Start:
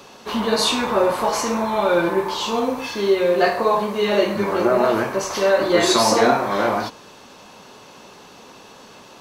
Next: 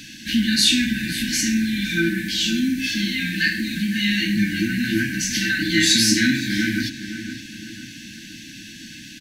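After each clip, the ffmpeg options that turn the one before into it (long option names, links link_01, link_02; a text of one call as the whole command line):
ffmpeg -i in.wav -filter_complex "[0:a]afftfilt=real='re*(1-between(b*sr/4096,340,1500))':imag='im*(1-between(b*sr/4096,340,1500))':win_size=4096:overlap=0.75,asplit=2[link_01][link_02];[link_02]acompressor=threshold=-33dB:ratio=6,volume=-2.5dB[link_03];[link_01][link_03]amix=inputs=2:normalize=0,asplit=2[link_04][link_05];[link_05]adelay=513,lowpass=frequency=2500:poles=1,volume=-10.5dB,asplit=2[link_06][link_07];[link_07]adelay=513,lowpass=frequency=2500:poles=1,volume=0.48,asplit=2[link_08][link_09];[link_09]adelay=513,lowpass=frequency=2500:poles=1,volume=0.48,asplit=2[link_10][link_11];[link_11]adelay=513,lowpass=frequency=2500:poles=1,volume=0.48,asplit=2[link_12][link_13];[link_13]adelay=513,lowpass=frequency=2500:poles=1,volume=0.48[link_14];[link_04][link_06][link_08][link_10][link_12][link_14]amix=inputs=6:normalize=0,volume=3dB" out.wav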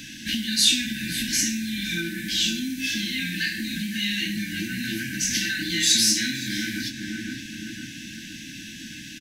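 ffmpeg -i in.wav -filter_complex "[0:a]asplit=2[link_01][link_02];[link_02]adelay=23,volume=-10.5dB[link_03];[link_01][link_03]amix=inputs=2:normalize=0,acrossover=split=2900[link_04][link_05];[link_04]acompressor=threshold=-28dB:ratio=6[link_06];[link_06][link_05]amix=inputs=2:normalize=0,bandreject=frequency=4400:width=15" out.wav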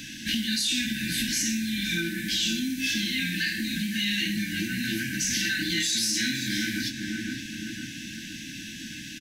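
ffmpeg -i in.wav -af "alimiter=limit=-17.5dB:level=0:latency=1:release=11" out.wav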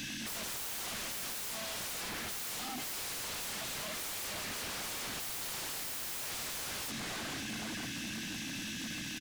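ffmpeg -i in.wav -af "aeval=exprs='0.0178*(abs(mod(val(0)/0.0178+3,4)-2)-1)':channel_layout=same" out.wav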